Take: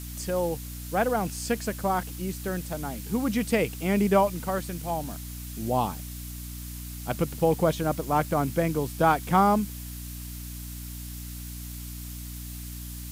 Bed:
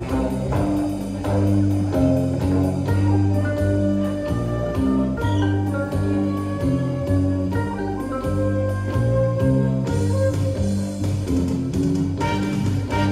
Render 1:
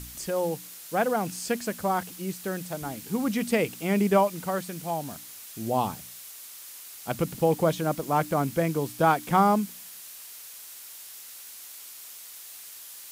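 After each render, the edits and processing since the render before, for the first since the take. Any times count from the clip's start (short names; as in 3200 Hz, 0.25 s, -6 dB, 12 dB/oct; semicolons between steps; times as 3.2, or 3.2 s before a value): de-hum 60 Hz, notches 5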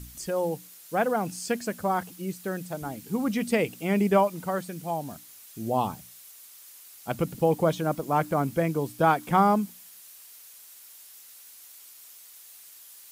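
denoiser 7 dB, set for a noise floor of -44 dBFS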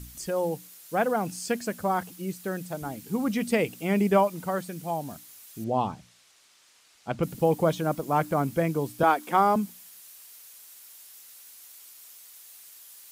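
5.64–7.23 air absorption 96 m; 9.03–9.56 HPF 240 Hz 24 dB/oct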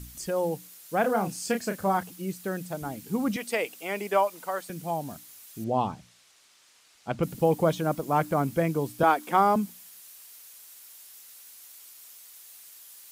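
1.01–1.97 doubler 31 ms -7 dB; 3.36–4.7 HPF 520 Hz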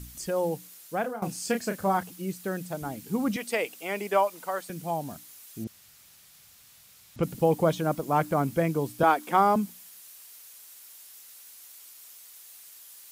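0.82–1.22 fade out, to -17 dB; 5.67–7.16 room tone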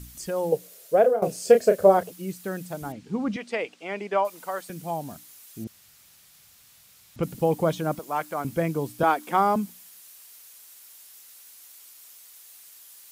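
0.52–2.13 band shelf 510 Hz +15 dB 1 oct; 2.92–4.25 air absorption 120 m; 7.99–8.45 HPF 830 Hz 6 dB/oct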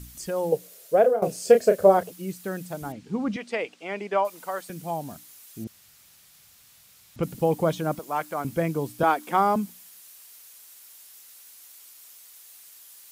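nothing audible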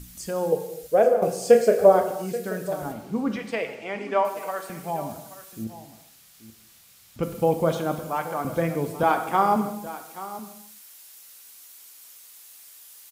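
echo 0.831 s -15.5 dB; non-linear reverb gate 0.35 s falling, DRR 6 dB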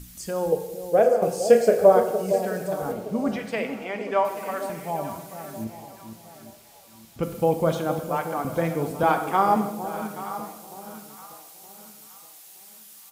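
echo with dull and thin repeats by turns 0.46 s, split 820 Hz, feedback 57%, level -9 dB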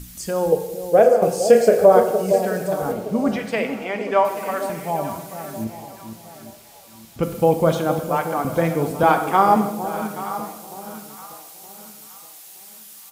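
gain +5 dB; limiter -2 dBFS, peak gain reduction 3 dB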